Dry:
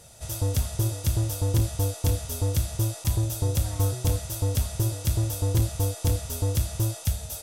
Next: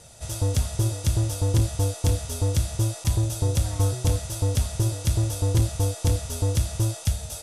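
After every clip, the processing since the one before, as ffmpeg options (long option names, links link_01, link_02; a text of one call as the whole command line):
ffmpeg -i in.wav -af "lowpass=frequency=11000:width=0.5412,lowpass=frequency=11000:width=1.3066,volume=2dB" out.wav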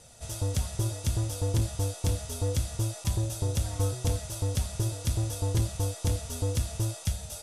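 ffmpeg -i in.wav -af "flanger=delay=3.8:depth=1.7:regen=68:speed=0.77:shape=triangular" out.wav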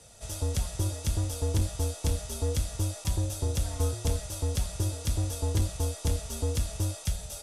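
ffmpeg -i in.wav -af "afreqshift=-16" out.wav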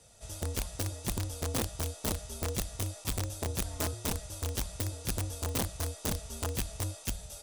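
ffmpeg -i in.wav -af "aeval=exprs='(mod(10.6*val(0)+1,2)-1)/10.6':channel_layout=same,volume=-5.5dB" out.wav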